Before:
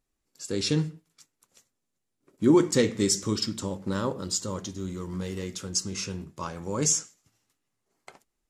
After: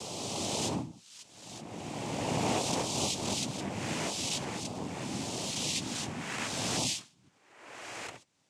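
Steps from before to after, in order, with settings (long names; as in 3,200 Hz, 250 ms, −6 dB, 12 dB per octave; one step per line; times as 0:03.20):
peak hold with a rise ahead of every peak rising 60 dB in 1.45 s
cochlear-implant simulation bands 4
multiband upward and downward compressor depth 70%
level −8.5 dB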